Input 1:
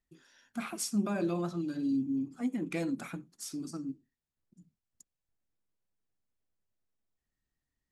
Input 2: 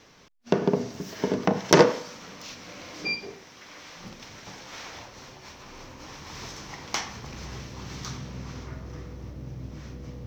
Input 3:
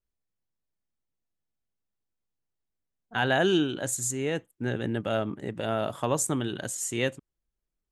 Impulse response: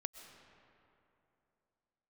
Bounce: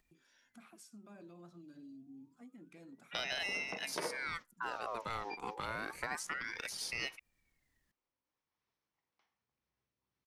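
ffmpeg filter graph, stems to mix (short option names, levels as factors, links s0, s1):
-filter_complex "[0:a]alimiter=level_in=2:limit=0.0631:level=0:latency=1:release=364,volume=0.501,acompressor=mode=upward:threshold=0.00631:ratio=2.5,volume=0.158[s0];[1:a]acrossover=split=4400[s1][s2];[s2]acompressor=threshold=0.00112:ratio=4:attack=1:release=60[s3];[s1][s3]amix=inputs=2:normalize=0,lowshelf=f=260:g=-7.5,adelay=2250,volume=0.316[s4];[2:a]aeval=exprs='val(0)*sin(2*PI*1500*n/s+1500*0.6/0.28*sin(2*PI*0.28*n/s))':c=same,volume=1.12,asplit=2[s5][s6];[s6]apad=whole_len=551718[s7];[s4][s7]sidechaingate=range=0.0126:threshold=0.0178:ratio=16:detection=peak[s8];[s0][s8][s5]amix=inputs=3:normalize=0,acrossover=split=410|6500[s9][s10][s11];[s9]acompressor=threshold=0.00251:ratio=4[s12];[s10]acompressor=threshold=0.0112:ratio=4[s13];[s11]acompressor=threshold=0.00224:ratio=4[s14];[s12][s13][s14]amix=inputs=3:normalize=0"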